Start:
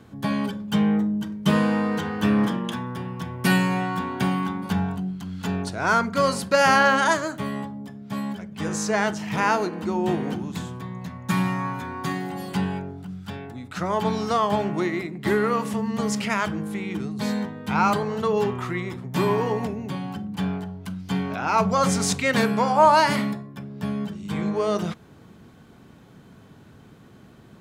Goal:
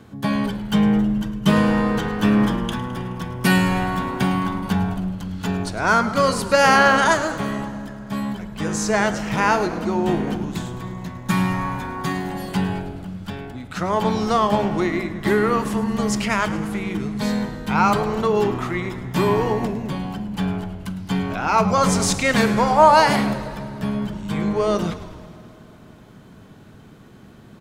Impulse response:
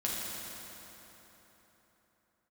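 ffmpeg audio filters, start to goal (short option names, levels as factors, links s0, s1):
-filter_complex "[0:a]asplit=8[s0][s1][s2][s3][s4][s5][s6][s7];[s1]adelay=106,afreqshift=-81,volume=0.188[s8];[s2]adelay=212,afreqshift=-162,volume=0.123[s9];[s3]adelay=318,afreqshift=-243,volume=0.0794[s10];[s4]adelay=424,afreqshift=-324,volume=0.0519[s11];[s5]adelay=530,afreqshift=-405,volume=0.0335[s12];[s6]adelay=636,afreqshift=-486,volume=0.0219[s13];[s7]adelay=742,afreqshift=-567,volume=0.0141[s14];[s0][s8][s9][s10][s11][s12][s13][s14]amix=inputs=8:normalize=0,asplit=2[s15][s16];[1:a]atrim=start_sample=2205[s17];[s16][s17]afir=irnorm=-1:irlink=0,volume=0.0891[s18];[s15][s18]amix=inputs=2:normalize=0,volume=1.33"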